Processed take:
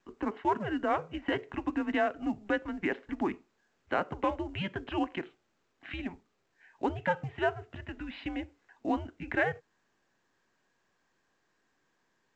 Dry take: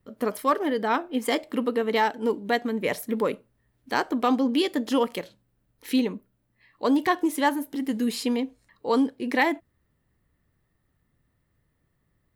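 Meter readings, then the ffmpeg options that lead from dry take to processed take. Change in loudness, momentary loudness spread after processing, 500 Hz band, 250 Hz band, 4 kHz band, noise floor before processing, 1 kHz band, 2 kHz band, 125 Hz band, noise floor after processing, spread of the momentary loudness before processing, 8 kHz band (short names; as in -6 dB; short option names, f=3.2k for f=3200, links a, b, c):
-8.0 dB, 12 LU, -8.0 dB, -9.0 dB, -11.5 dB, -73 dBFS, -7.0 dB, -5.0 dB, +3.0 dB, -76 dBFS, 7 LU, under -20 dB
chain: -af "acompressor=threshold=-27dB:ratio=2,highpass=f=430:t=q:w=0.5412,highpass=f=430:t=q:w=1.307,lowpass=f=3k:t=q:w=0.5176,lowpass=f=3k:t=q:w=0.7071,lowpass=f=3k:t=q:w=1.932,afreqshift=-190" -ar 16000 -c:a pcm_mulaw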